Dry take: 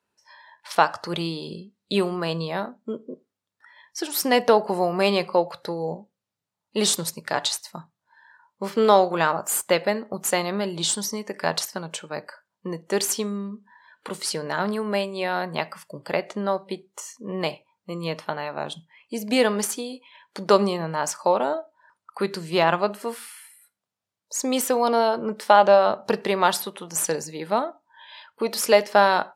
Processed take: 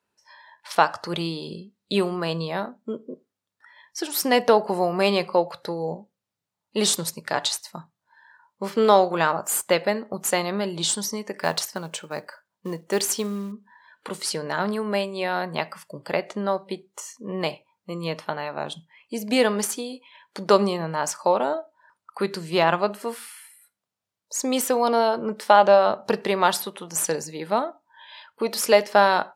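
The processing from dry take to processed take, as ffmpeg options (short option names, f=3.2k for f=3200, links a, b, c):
-filter_complex "[0:a]asettb=1/sr,asplit=3[a][b][c];[a]atrim=end=11.394[d];[b]atrim=start=11.39:end=13.52,asetpts=PTS-STARTPTS,afade=t=in:d=0.004:c=qsin,afade=t=out:st=2.126:d=0.004:c=qsin,acrusher=bits=6:mode=log:mix=0:aa=0.000001[e];[c]atrim=start=13.516[f];[d][e]acrossfade=d=0.004:c1=hsin:c2=qsin[g];[g][f]acrossfade=d=0.004:c1=qsin:c2=hsin"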